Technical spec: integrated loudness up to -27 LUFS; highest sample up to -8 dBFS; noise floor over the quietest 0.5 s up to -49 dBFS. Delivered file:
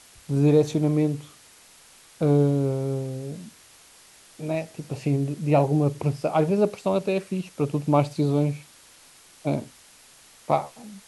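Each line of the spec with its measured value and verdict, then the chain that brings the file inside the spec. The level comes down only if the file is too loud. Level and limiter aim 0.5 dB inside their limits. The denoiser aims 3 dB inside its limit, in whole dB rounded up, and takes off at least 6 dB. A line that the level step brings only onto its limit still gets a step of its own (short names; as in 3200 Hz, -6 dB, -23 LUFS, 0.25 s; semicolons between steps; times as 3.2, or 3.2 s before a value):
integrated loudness -24.5 LUFS: fail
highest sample -6.5 dBFS: fail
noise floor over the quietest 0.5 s -52 dBFS: OK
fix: gain -3 dB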